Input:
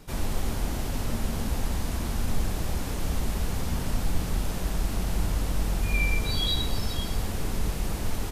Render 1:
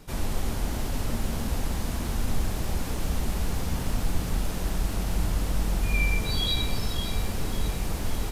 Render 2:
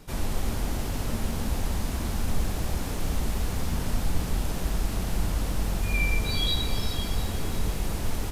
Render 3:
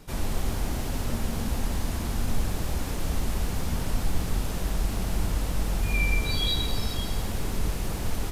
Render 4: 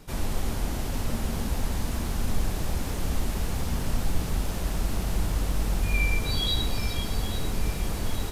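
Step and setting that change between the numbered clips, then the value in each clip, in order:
bit-crushed delay, time: 567 ms, 346 ms, 172 ms, 838 ms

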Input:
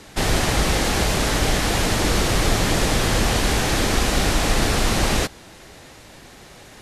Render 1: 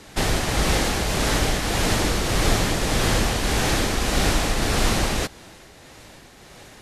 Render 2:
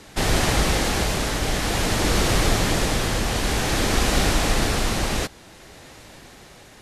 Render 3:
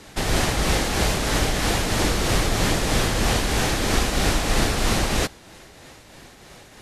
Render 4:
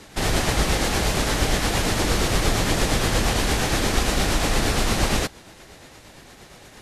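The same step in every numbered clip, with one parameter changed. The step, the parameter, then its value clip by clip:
tremolo, rate: 1.7 Hz, 0.54 Hz, 3.1 Hz, 8.6 Hz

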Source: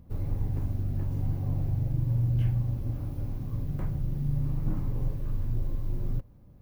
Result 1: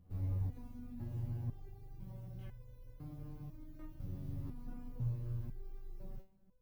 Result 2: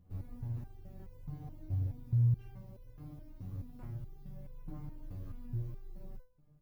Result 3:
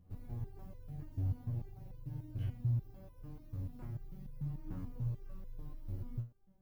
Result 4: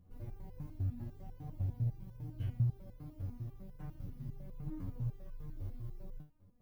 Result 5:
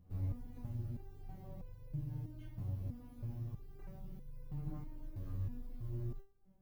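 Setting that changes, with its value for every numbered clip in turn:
resonator arpeggio, rate: 2 Hz, 4.7 Hz, 6.8 Hz, 10 Hz, 3.1 Hz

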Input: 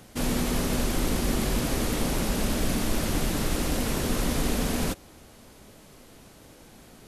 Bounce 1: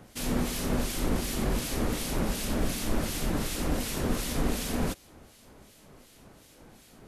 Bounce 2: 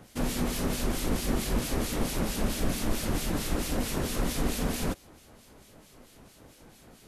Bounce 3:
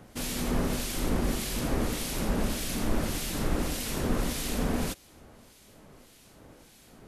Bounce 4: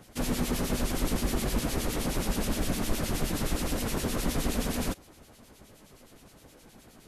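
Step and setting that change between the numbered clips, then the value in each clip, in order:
harmonic tremolo, rate: 2.7 Hz, 4.5 Hz, 1.7 Hz, 9.6 Hz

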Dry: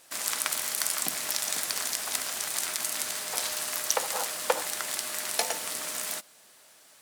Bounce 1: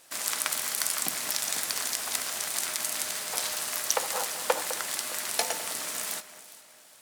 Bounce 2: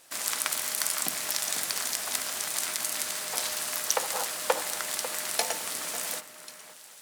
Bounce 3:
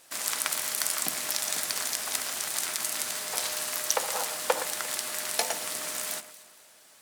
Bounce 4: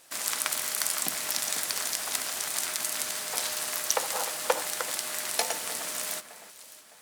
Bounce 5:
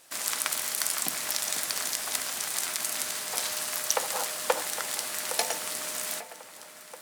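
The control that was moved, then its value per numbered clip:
echo whose repeats swap between lows and highs, time: 205 ms, 545 ms, 116 ms, 305 ms, 812 ms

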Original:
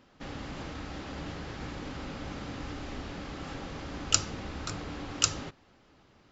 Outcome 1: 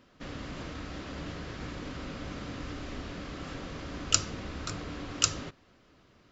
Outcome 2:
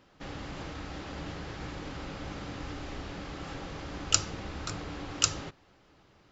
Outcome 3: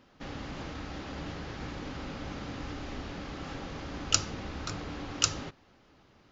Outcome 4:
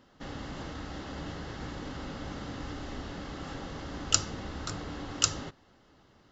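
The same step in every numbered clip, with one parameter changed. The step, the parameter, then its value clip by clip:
band-stop, frequency: 830 Hz, 240 Hz, 7.6 kHz, 2.4 kHz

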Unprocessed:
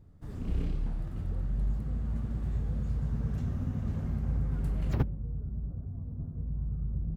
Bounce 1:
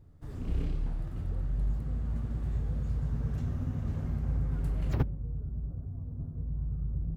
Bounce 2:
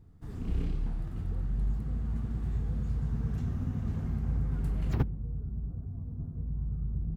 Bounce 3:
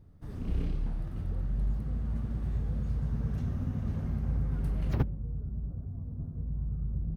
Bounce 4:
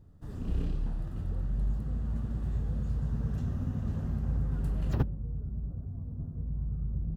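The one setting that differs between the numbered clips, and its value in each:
band-stop, frequency: 200 Hz, 570 Hz, 7.3 kHz, 2.2 kHz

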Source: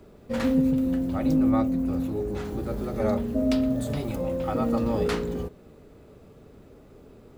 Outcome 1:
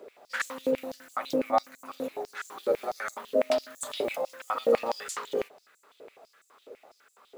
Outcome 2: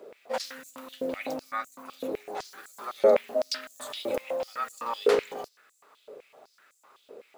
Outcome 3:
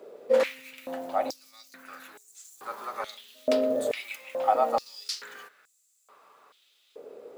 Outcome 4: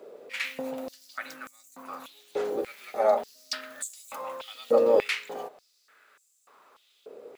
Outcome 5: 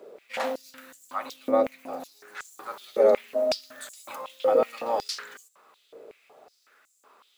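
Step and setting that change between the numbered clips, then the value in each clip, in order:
step-sequenced high-pass, rate: 12 Hz, 7.9 Hz, 2.3 Hz, 3.4 Hz, 5.4 Hz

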